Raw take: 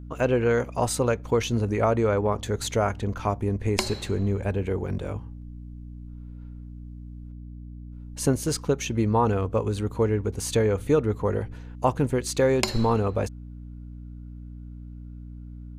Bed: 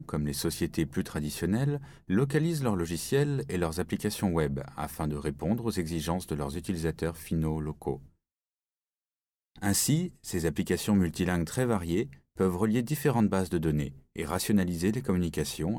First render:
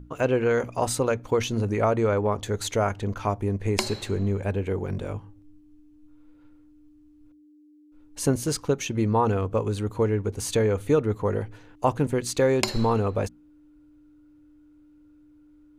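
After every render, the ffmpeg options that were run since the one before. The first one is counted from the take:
-af "bandreject=f=60:t=h:w=6,bandreject=f=120:t=h:w=6,bandreject=f=180:t=h:w=6,bandreject=f=240:t=h:w=6"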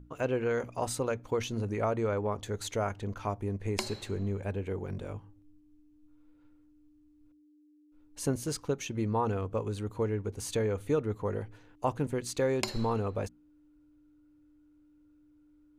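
-af "volume=-7.5dB"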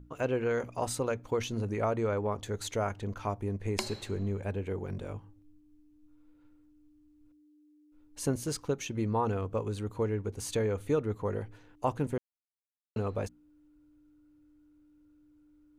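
-filter_complex "[0:a]asplit=3[a][b][c];[a]atrim=end=12.18,asetpts=PTS-STARTPTS,afade=t=out:st=12.176:d=0.004:c=hsin[d];[b]atrim=start=12.18:end=12.96,asetpts=PTS-STARTPTS,volume=0[e];[c]atrim=start=12.96,asetpts=PTS-STARTPTS,afade=t=in:d=0.004:c=hsin[f];[d][e][f]concat=n=3:v=0:a=1"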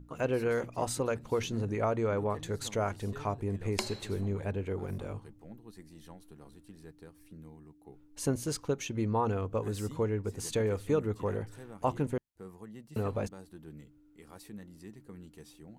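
-filter_complex "[1:a]volume=-21dB[a];[0:a][a]amix=inputs=2:normalize=0"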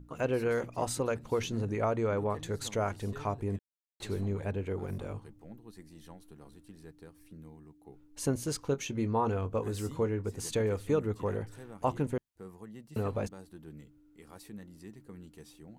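-filter_complex "[0:a]asettb=1/sr,asplit=3[a][b][c];[a]atrim=end=8.614[d];[b]atrim=start=8.61:end=10.28,asetpts=PTS-STARTPTS,afade=t=in:d=0.004:c=qsin,afade=t=out:st=1.666:d=0.004:c=qsin,asplit=2[e][f];[f]adelay=22,volume=-11.5dB[g];[e][g]amix=inputs=2:normalize=0,atrim=end_sample=73647[h];[c]atrim=start=10.276[i];[d][h]acrossfade=d=0.004:c1=hsin:c2=qsin[j];[j][i]acrossfade=d=0.004:c1=qsin:c2=hsin,asplit=3[k][l][m];[k]atrim=end=3.59,asetpts=PTS-STARTPTS,afade=t=out:st=3.586:d=0.004:c=hsin[n];[l]atrim=start=3.59:end=4,asetpts=PTS-STARTPTS,volume=0[o];[m]atrim=start=4,asetpts=PTS-STARTPTS,afade=t=in:d=0.004:c=hsin[p];[n][o][p]concat=n=3:v=0:a=1"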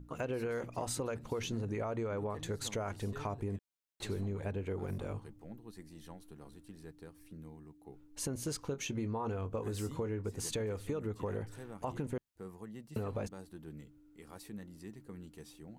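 -af "alimiter=limit=-23.5dB:level=0:latency=1:release=46,acompressor=threshold=-33dB:ratio=6"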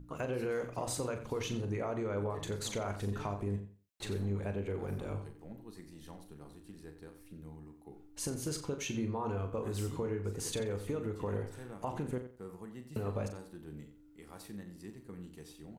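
-filter_complex "[0:a]asplit=2[a][b];[b]adelay=40,volume=-8.5dB[c];[a][c]amix=inputs=2:normalize=0,asplit=2[d][e];[e]adelay=89,lowpass=f=4.3k:p=1,volume=-10.5dB,asplit=2[f][g];[g]adelay=89,lowpass=f=4.3k:p=1,volume=0.22,asplit=2[h][i];[i]adelay=89,lowpass=f=4.3k:p=1,volume=0.22[j];[d][f][h][j]amix=inputs=4:normalize=0"

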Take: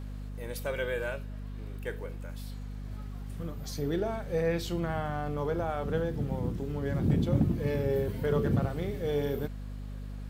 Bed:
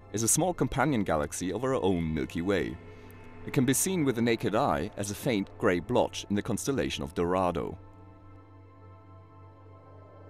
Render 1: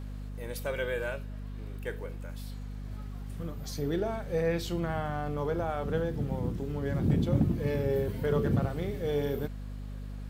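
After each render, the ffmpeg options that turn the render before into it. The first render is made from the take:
-af anull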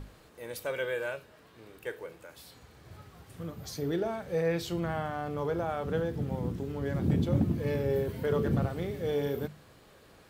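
-af "bandreject=f=50:t=h:w=6,bandreject=f=100:t=h:w=6,bandreject=f=150:t=h:w=6,bandreject=f=200:t=h:w=6,bandreject=f=250:t=h:w=6"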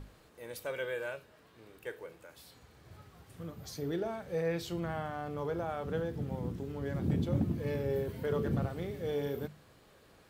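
-af "volume=-4dB"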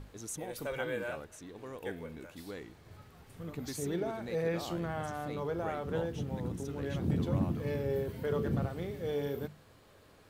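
-filter_complex "[1:a]volume=-16.5dB[a];[0:a][a]amix=inputs=2:normalize=0"

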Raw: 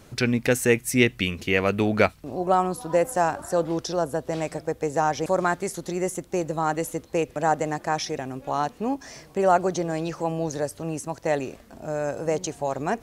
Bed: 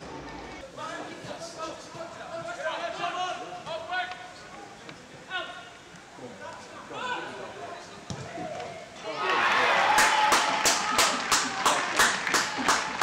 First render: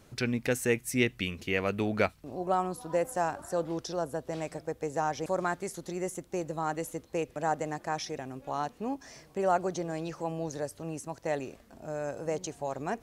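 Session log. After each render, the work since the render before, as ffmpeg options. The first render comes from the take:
-af "volume=-7.5dB"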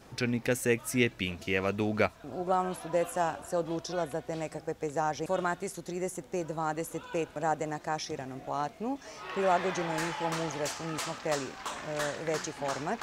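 -filter_complex "[1:a]volume=-14.5dB[a];[0:a][a]amix=inputs=2:normalize=0"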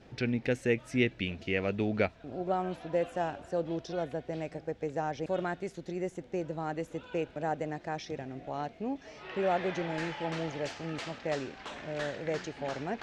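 -af "lowpass=3.5k,equalizer=f=1.1k:w=1.8:g=-9.5"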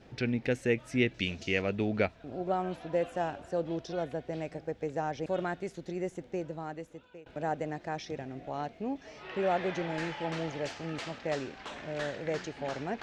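-filter_complex "[0:a]asettb=1/sr,asplit=3[a][b][c];[a]atrim=end=1.144[d];[b]atrim=start=1.14:end=1.62,asetpts=PTS-STARTPTS,afade=t=in:d=0.004:c=qsin,afade=t=out:st=0.476:d=0.004:c=qsin,equalizer=f=6.3k:w=0.96:g=13.5[e];[c]atrim=start=1.616[f];[d][e]acrossfade=d=0.004:c1=hsin:c2=qsin[g];[g][f]acrossfade=d=0.004:c1=qsin:c2=hsin,asplit=2[h][i];[h]atrim=end=7.26,asetpts=PTS-STARTPTS,afade=t=out:st=6.25:d=1.01:silence=0.0668344[j];[i]atrim=start=7.26,asetpts=PTS-STARTPTS,afade=t=in:d=0.004:c=hsin:silence=0.0668344[k];[j][k]concat=n=2:v=0:a=1"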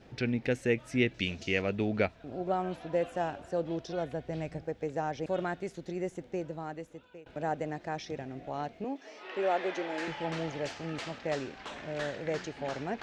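-filter_complex "[0:a]asettb=1/sr,asplit=3[a][b][c];[a]atrim=end=3.954[d];[b]atrim=start=3.95:end=4.63,asetpts=PTS-STARTPTS,afade=t=in:d=0.004:c=qsin,afade=t=out:st=0.676:d=0.004:c=qsin,asubboost=boost=9.5:cutoff=210[e];[c]atrim=start=4.626[f];[d][e]acrossfade=d=0.004:c1=hsin:c2=qsin[g];[g][f]acrossfade=d=0.004:c1=qsin:c2=hsin,asettb=1/sr,asplit=3[h][i][j];[h]atrim=end=8.844[k];[i]atrim=start=8.84:end=10.08,asetpts=PTS-STARTPTS,afade=t=in:d=0.004:c=qsin,afade=t=out:st=1.236:d=0.004:c=qsin,highpass=f=260:w=0.5412,highpass=f=260:w=1.3066[l];[j]atrim=start=10.076[m];[k][l]acrossfade=d=0.004:c1=hsin:c2=qsin[n];[n][m]acrossfade=d=0.004:c1=qsin:c2=hsin"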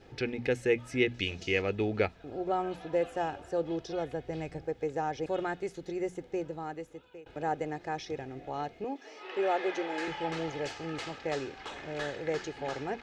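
-af "bandreject=f=60:t=h:w=6,bandreject=f=120:t=h:w=6,bandreject=f=180:t=h:w=6,bandreject=f=240:t=h:w=6,aecho=1:1:2.4:0.41"

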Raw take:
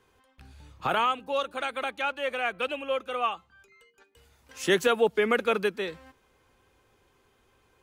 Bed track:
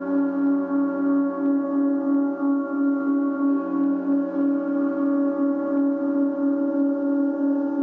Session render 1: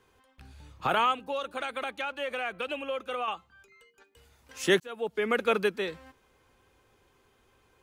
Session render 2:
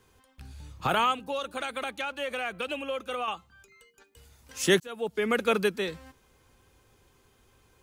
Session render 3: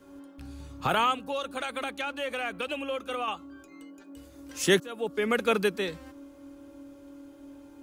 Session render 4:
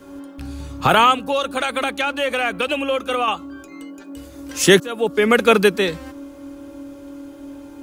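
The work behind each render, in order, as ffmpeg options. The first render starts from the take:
-filter_complex "[0:a]asettb=1/sr,asplit=3[a][b][c];[a]atrim=end=1.294[d];[b]atrim=start=1.29:end=3.28,asetpts=PTS-STARTPTS,afade=t=in:d=0.004:c=qsin,afade=t=out:st=1.986:d=0.004:c=qsin,acompressor=threshold=-28dB:ratio=5:attack=3.2:release=140:knee=1:detection=peak[e];[c]atrim=start=3.276[f];[d][e]acrossfade=d=0.004:c1=hsin:c2=qsin[g];[g][f]acrossfade=d=0.004:c1=qsin:c2=hsin,asplit=2[h][i];[h]atrim=end=4.8,asetpts=PTS-STARTPTS,afade=t=out:st=4.796:d=0.004:c=hsin[j];[i]atrim=start=4.8,asetpts=PTS-STARTPTS,afade=t=in:d=0.71[k];[j][k]concat=n=2:v=0:a=1"
-af "bass=f=250:g=6,treble=f=4k:g=7"
-filter_complex "[1:a]volume=-26dB[a];[0:a][a]amix=inputs=2:normalize=0"
-af "volume=11.5dB,alimiter=limit=-1dB:level=0:latency=1"

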